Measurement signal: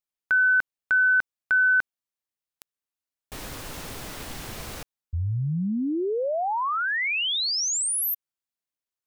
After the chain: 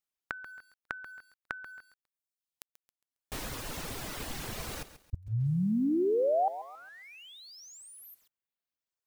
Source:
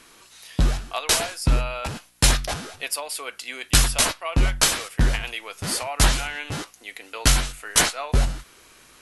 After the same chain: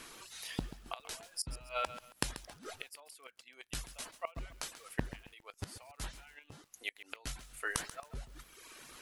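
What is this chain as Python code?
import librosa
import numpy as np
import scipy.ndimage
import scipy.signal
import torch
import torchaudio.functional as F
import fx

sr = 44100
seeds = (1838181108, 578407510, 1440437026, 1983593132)

y = fx.dereverb_blind(x, sr, rt60_s=0.74)
y = fx.gate_flip(y, sr, shuts_db=-23.0, range_db=-25)
y = fx.echo_crushed(y, sr, ms=136, feedback_pct=35, bits=9, wet_db=-13.0)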